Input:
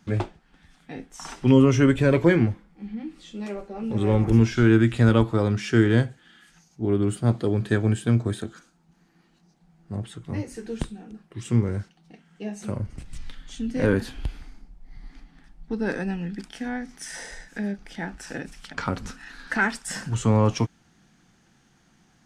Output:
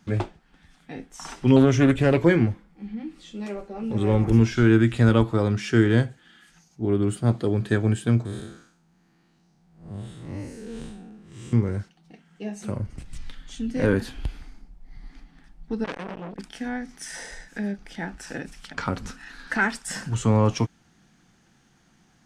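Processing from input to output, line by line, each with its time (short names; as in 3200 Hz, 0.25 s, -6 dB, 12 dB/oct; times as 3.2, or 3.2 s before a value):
1.56–2.21 Doppler distortion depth 0.26 ms
8.25–11.53 time blur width 0.176 s
15.84–16.39 core saturation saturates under 1900 Hz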